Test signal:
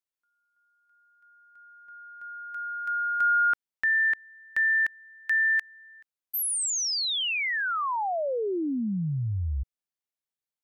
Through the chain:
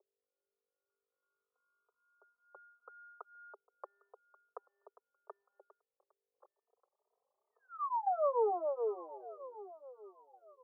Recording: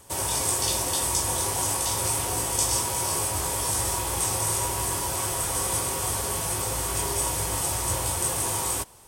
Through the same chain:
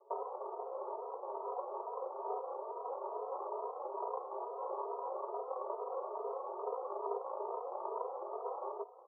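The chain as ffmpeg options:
-filter_complex "[0:a]bandreject=f=810:w=24,acompressor=threshold=0.0224:ratio=16:attack=13:release=141:knee=6:detection=peak,aeval=exprs='0.1*(cos(1*acos(clip(val(0)/0.1,-1,1)))-cos(1*PI/2))+0.00631*(cos(7*acos(clip(val(0)/0.1,-1,1)))-cos(7*PI/2))+0.0178*(cos(8*acos(clip(val(0)/0.1,-1,1)))-cos(8*PI/2))':c=same,aeval=exprs='val(0)+0.00316*(sin(2*PI*50*n/s)+sin(2*PI*2*50*n/s)/2+sin(2*PI*3*50*n/s)/3+sin(2*PI*4*50*n/s)/4+sin(2*PI*5*50*n/s)/5)':c=same,adynamicsmooth=sensitivity=1.5:basefreq=590,asuperpass=centerf=700:order=20:qfactor=0.81,asplit=2[s0][s1];[s1]aecho=0:1:1134|2268:0.133|0.036[s2];[s0][s2]amix=inputs=2:normalize=0,asplit=2[s3][s4];[s4]adelay=3,afreqshift=2.3[s5];[s3][s5]amix=inputs=2:normalize=1,volume=3.16"

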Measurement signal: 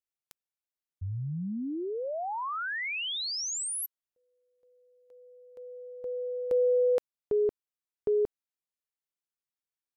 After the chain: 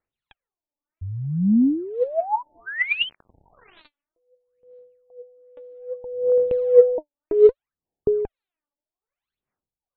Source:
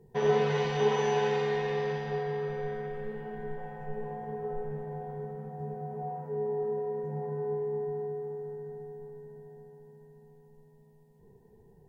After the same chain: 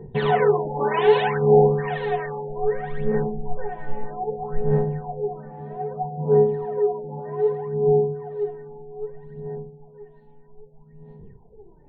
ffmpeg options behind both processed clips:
-af "aphaser=in_gain=1:out_gain=1:delay=3.5:decay=0.76:speed=0.63:type=sinusoidal,afftfilt=real='re*lt(b*sr/1024,900*pow(4500/900,0.5+0.5*sin(2*PI*1.1*pts/sr)))':imag='im*lt(b*sr/1024,900*pow(4500/900,0.5+0.5*sin(2*PI*1.1*pts/sr)))':win_size=1024:overlap=0.75,volume=2"

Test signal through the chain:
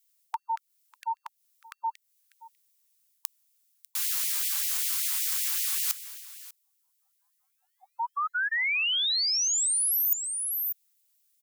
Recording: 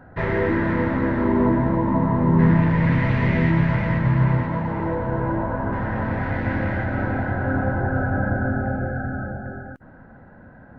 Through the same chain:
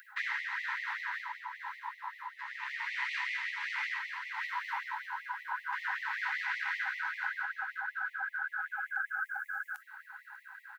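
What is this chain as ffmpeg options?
-filter_complex "[0:a]acrossover=split=440[s0][s1];[s1]acompressor=threshold=0.0355:ratio=4[s2];[s0][s2]amix=inputs=2:normalize=0,aecho=1:1:596:0.075,crystalizer=i=8.5:c=0,areverse,acompressor=threshold=0.0631:ratio=12,areverse,afftfilt=real='re*gte(b*sr/1024,750*pow(1900/750,0.5+0.5*sin(2*PI*5.2*pts/sr)))':imag='im*gte(b*sr/1024,750*pow(1900/750,0.5+0.5*sin(2*PI*5.2*pts/sr)))':win_size=1024:overlap=0.75,volume=0.891"

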